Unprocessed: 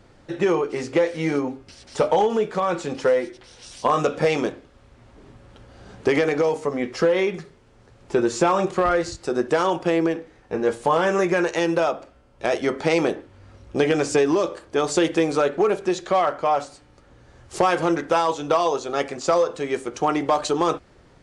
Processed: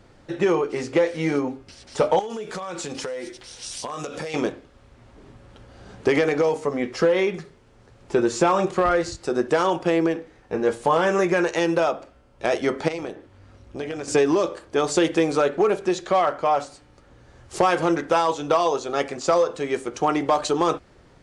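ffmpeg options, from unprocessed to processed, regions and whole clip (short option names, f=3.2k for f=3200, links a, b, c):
-filter_complex "[0:a]asettb=1/sr,asplit=3[a][b][c];[a]atrim=end=2.194[d];[b]atrim=start=2.19:end=4.34,asetpts=PTS-STARTPTS,afade=t=in:d=0.004:c=qsin,afade=t=out:st=2.146:d=0.004:c=qsin,highshelf=f=3.7k:g=12,acompressor=threshold=-27dB:ratio=16:attack=3.2:release=140:knee=1:detection=peak[e];[c]atrim=start=4.336[f];[d][e]acrossfade=d=0.004:c1=hsin:c2=qsin[g];[g][f]acrossfade=d=0.004:c1=qsin:c2=hsin,asettb=1/sr,asplit=3[h][i][j];[h]atrim=end=12.884[k];[i]atrim=start=12.88:end=14.08,asetpts=PTS-STARTPTS,afade=t=in:d=0.004:c=qsin,afade=t=out:st=1.196:d=0.004:c=qsin,tremolo=f=190:d=0.462,acompressor=threshold=-42dB:ratio=1.5:attack=3.2:release=140:knee=1:detection=peak[l];[j]atrim=start=14.076[m];[k][l]acrossfade=d=0.004:c1=hsin:c2=qsin[n];[n][m]acrossfade=d=0.004:c1=qsin:c2=hsin"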